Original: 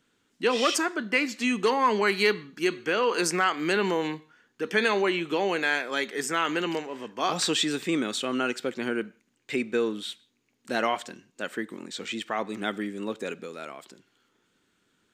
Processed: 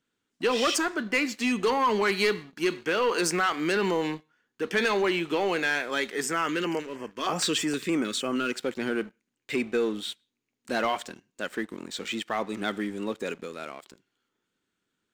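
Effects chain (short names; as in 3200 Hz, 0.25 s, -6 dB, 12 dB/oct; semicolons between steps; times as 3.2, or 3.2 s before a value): sample leveller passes 2; 6.33–8.53 LFO notch square 3.2 Hz 770–3800 Hz; gain -6.5 dB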